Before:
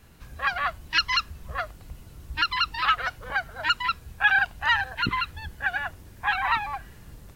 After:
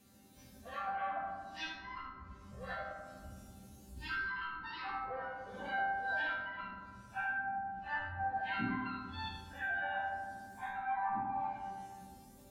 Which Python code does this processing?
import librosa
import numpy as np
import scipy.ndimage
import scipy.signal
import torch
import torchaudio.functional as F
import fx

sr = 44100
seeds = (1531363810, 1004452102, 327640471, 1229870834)

p1 = scipy.signal.sosfilt(scipy.signal.butter(2, 110.0, 'highpass', fs=sr, output='sos'), x)
p2 = fx.env_lowpass_down(p1, sr, base_hz=320.0, full_db=-18.5)
p3 = fx.noise_reduce_blind(p2, sr, reduce_db=8)
p4 = fx.peak_eq(p3, sr, hz=1500.0, db=-11.5, octaves=2.2)
p5 = fx.over_compress(p4, sr, threshold_db=-45.0, ratio=-1.0)
p6 = p4 + F.gain(torch.from_numpy(p5), 2.5).numpy()
p7 = fx.resonator_bank(p6, sr, root=55, chord='sus4', decay_s=0.28)
p8 = fx.stretch_vocoder_free(p7, sr, factor=1.7)
p9 = p8 + 10.0 ** (-8.5 / 20.0) * np.pad(p8, (int(79 * sr / 1000.0), 0))[:len(p8)]
p10 = fx.rev_fdn(p9, sr, rt60_s=1.8, lf_ratio=1.0, hf_ratio=0.3, size_ms=26.0, drr_db=0.5)
y = F.gain(torch.from_numpy(p10), 11.5).numpy()